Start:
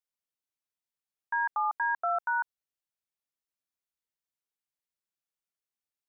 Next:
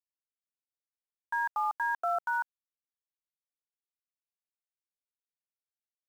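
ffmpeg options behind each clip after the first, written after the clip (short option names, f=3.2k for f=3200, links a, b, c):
-af "aeval=exprs='val(0)+0.000891*sin(2*PI*1400*n/s)':c=same,lowshelf=f=380:g=12,aeval=exprs='val(0)*gte(abs(val(0)),0.00668)':c=same,volume=-3dB"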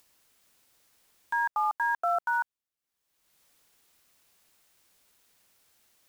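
-af "acompressor=mode=upward:threshold=-47dB:ratio=2.5,volume=3dB"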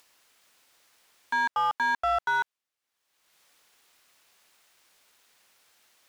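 -filter_complex "[0:a]asplit=2[a][b];[b]highpass=f=720:p=1,volume=12dB,asoftclip=type=tanh:threshold=-19.5dB[c];[a][c]amix=inputs=2:normalize=0,lowpass=f=4.5k:p=1,volume=-6dB"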